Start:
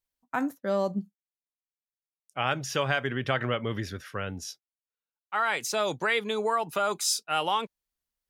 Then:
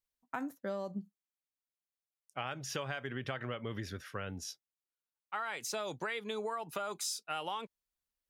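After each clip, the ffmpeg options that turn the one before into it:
ffmpeg -i in.wav -af "acompressor=threshold=-30dB:ratio=6,volume=-4.5dB" out.wav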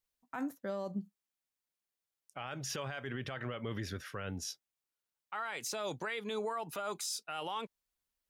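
ffmpeg -i in.wav -af "alimiter=level_in=7.5dB:limit=-24dB:level=0:latency=1:release=14,volume=-7.5dB,volume=2.5dB" out.wav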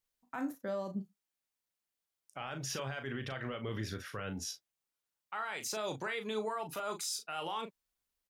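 ffmpeg -i in.wav -filter_complex "[0:a]asplit=2[link_01][link_02];[link_02]adelay=37,volume=-8dB[link_03];[link_01][link_03]amix=inputs=2:normalize=0" out.wav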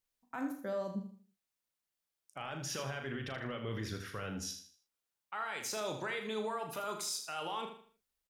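ffmpeg -i in.wav -af "aecho=1:1:79|158|237|316:0.376|0.128|0.0434|0.0148,volume=-1dB" out.wav

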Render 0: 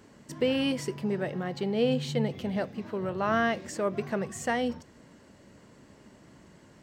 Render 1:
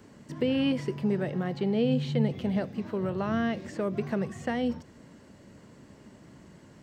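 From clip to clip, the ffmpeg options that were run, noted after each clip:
ffmpeg -i in.wav -filter_complex "[0:a]acrossover=split=4000[link_01][link_02];[link_02]acompressor=threshold=-56dB:ratio=4:attack=1:release=60[link_03];[link_01][link_03]amix=inputs=2:normalize=0,equalizer=frequency=140:width_type=o:width=2.6:gain=4,acrossover=split=400|3000[link_04][link_05][link_06];[link_05]acompressor=threshold=-32dB:ratio=6[link_07];[link_04][link_07][link_06]amix=inputs=3:normalize=0" out.wav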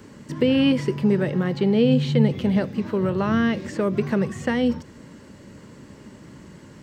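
ffmpeg -i in.wav -af "equalizer=frequency=700:width_type=o:width=0.21:gain=-10,volume=8dB" out.wav

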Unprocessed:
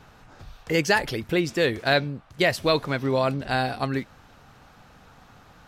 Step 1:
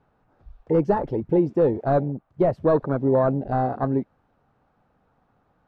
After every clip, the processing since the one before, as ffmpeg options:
ffmpeg -i in.wav -filter_complex "[0:a]asplit=2[link_01][link_02];[link_02]highpass=frequency=720:poles=1,volume=13dB,asoftclip=type=tanh:threshold=-7.5dB[link_03];[link_01][link_03]amix=inputs=2:normalize=0,lowpass=frequency=1600:poles=1,volume=-6dB,tiltshelf=frequency=970:gain=9,afwtdn=0.0794,volume=-3dB" out.wav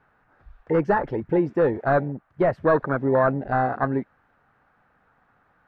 ffmpeg -i in.wav -af "equalizer=frequency=1700:width=1:gain=14.5,volume=-2.5dB" out.wav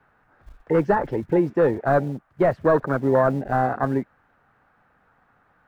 ffmpeg -i in.wav -filter_complex "[0:a]acrossover=split=130|1000[link_01][link_02][link_03];[link_01]acrusher=bits=4:mode=log:mix=0:aa=0.000001[link_04];[link_03]alimiter=limit=-22.5dB:level=0:latency=1[link_05];[link_04][link_02][link_05]amix=inputs=3:normalize=0,volume=1.5dB" out.wav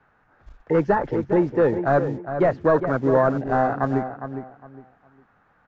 ffmpeg -i in.wav -filter_complex "[0:a]aresample=16000,aresample=44100,asplit=2[link_01][link_02];[link_02]adelay=408,lowpass=frequency=2200:poles=1,volume=-9dB,asplit=2[link_03][link_04];[link_04]adelay=408,lowpass=frequency=2200:poles=1,volume=0.26,asplit=2[link_05][link_06];[link_06]adelay=408,lowpass=frequency=2200:poles=1,volume=0.26[link_07];[link_03][link_05][link_07]amix=inputs=3:normalize=0[link_08];[link_01][link_08]amix=inputs=2:normalize=0" out.wav

